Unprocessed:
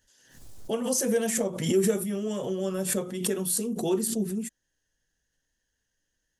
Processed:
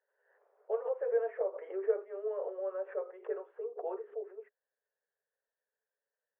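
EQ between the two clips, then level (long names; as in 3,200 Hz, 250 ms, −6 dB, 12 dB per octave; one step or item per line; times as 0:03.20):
Gaussian smoothing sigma 6.5 samples
Chebyshev high-pass with heavy ripple 410 Hz, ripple 3 dB
high-frequency loss of the air 69 metres
0.0 dB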